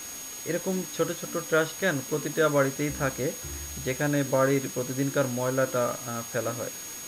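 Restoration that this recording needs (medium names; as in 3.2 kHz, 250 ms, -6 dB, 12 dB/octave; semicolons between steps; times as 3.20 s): band-stop 6.6 kHz, Q 30; noise reduction 30 dB, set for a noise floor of -39 dBFS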